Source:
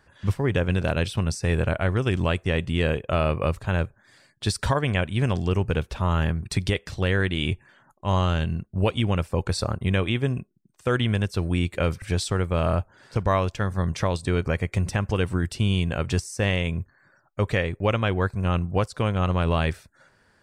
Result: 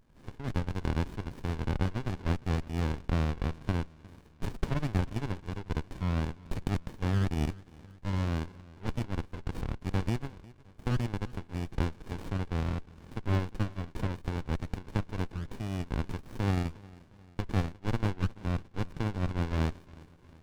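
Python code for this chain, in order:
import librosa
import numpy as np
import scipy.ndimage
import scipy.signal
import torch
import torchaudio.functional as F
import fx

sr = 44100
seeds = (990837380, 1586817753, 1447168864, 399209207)

y = fx.env_lowpass_down(x, sr, base_hz=2300.0, full_db=-20.0)
y = fx.highpass_res(y, sr, hz=1200.0, q=1.7)
y = fx.high_shelf(y, sr, hz=3100.0, db=11.5)
y = fx.echo_tape(y, sr, ms=356, feedback_pct=64, wet_db=-19.0, lp_hz=4800.0, drive_db=8.0, wow_cents=8)
y = fx.running_max(y, sr, window=65)
y = y * librosa.db_to_amplitude(-4.0)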